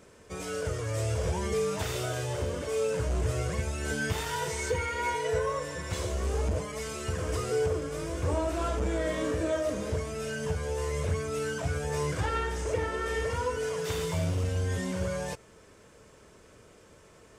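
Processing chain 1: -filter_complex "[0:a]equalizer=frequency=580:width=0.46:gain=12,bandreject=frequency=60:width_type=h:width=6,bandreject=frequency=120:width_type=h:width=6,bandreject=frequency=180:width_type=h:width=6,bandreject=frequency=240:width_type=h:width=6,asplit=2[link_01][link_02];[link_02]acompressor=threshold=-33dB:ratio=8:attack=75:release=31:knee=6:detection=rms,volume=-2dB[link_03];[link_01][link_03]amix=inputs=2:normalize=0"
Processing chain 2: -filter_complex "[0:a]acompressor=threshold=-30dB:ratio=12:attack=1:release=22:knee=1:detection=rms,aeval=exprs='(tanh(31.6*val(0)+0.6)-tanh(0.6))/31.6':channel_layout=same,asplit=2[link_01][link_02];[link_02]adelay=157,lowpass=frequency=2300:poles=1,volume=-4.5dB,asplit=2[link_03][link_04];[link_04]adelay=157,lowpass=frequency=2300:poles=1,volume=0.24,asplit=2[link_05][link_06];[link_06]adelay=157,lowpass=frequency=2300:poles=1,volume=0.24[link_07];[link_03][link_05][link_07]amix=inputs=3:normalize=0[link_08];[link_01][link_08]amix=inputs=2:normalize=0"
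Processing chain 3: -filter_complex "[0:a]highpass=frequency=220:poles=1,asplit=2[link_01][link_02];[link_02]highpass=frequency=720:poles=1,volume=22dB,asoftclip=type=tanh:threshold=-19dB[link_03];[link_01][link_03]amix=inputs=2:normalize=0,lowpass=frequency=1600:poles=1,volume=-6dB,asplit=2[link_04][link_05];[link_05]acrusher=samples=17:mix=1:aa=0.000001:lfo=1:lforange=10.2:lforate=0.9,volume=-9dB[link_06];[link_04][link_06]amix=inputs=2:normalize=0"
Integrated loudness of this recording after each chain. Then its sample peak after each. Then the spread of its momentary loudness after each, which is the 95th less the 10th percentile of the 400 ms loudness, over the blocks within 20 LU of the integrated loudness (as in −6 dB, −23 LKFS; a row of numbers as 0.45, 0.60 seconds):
−20.5, −37.0, −26.5 LKFS; −6.5, −24.0, −17.0 dBFS; 5, 3, 11 LU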